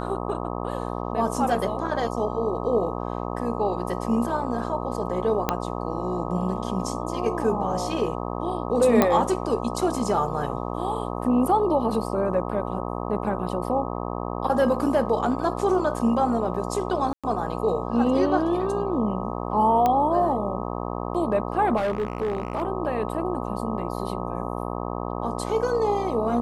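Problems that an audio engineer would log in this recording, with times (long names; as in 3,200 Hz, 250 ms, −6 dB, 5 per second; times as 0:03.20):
mains buzz 60 Hz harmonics 21 −30 dBFS
0:05.49: click −7 dBFS
0:09.02: click −5 dBFS
0:17.13–0:17.24: drop-out 106 ms
0:19.86: click −10 dBFS
0:21.76–0:22.63: clipping −21 dBFS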